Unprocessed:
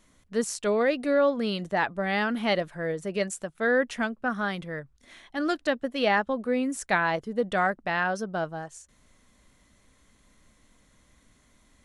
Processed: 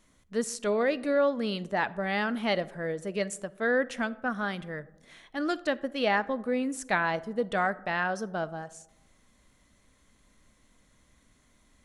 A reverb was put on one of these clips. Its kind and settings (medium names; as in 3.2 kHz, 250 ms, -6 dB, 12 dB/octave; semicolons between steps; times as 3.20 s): algorithmic reverb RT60 1.1 s, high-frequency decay 0.3×, pre-delay 5 ms, DRR 18.5 dB; trim -2.5 dB